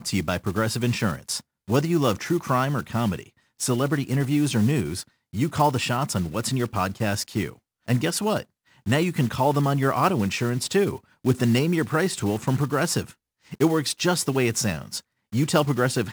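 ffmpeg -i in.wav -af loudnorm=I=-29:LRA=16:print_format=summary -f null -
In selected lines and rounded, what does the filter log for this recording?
Input Integrated:    -24.1 LUFS
Input True Peak:      -6.6 dBTP
Input LRA:             1.7 LU
Input Threshold:     -34.5 LUFS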